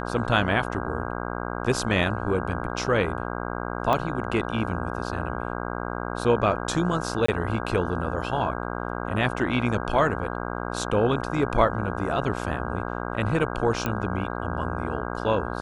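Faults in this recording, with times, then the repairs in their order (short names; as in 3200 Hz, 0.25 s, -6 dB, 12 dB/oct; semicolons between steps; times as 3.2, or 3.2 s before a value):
buzz 60 Hz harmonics 27 -31 dBFS
3.93 pop -11 dBFS
7.26–7.28 gap 24 ms
13.86 pop -12 dBFS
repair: de-click; de-hum 60 Hz, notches 27; interpolate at 7.26, 24 ms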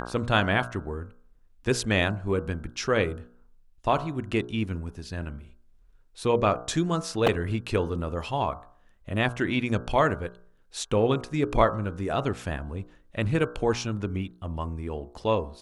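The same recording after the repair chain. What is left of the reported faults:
3.93 pop
13.86 pop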